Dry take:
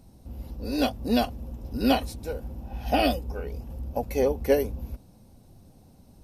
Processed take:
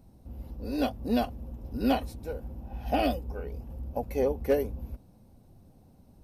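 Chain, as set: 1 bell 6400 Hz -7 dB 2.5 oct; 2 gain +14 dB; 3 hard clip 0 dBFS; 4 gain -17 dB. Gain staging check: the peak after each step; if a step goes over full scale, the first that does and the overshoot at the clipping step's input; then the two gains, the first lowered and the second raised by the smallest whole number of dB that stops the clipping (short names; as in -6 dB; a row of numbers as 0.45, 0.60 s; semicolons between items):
-10.5, +3.5, 0.0, -17.0 dBFS; step 2, 3.5 dB; step 2 +10 dB, step 4 -13 dB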